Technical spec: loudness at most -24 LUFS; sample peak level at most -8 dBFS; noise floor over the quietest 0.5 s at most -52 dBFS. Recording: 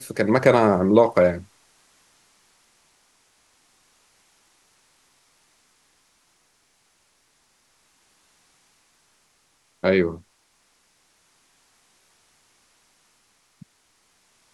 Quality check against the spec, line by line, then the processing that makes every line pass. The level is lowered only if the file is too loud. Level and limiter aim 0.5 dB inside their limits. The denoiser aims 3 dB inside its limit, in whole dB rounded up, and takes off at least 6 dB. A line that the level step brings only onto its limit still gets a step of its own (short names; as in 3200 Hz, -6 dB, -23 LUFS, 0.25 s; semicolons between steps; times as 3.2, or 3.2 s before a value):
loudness -19.5 LUFS: fail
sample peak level -2.5 dBFS: fail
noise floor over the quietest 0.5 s -65 dBFS: OK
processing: gain -5 dB; limiter -8.5 dBFS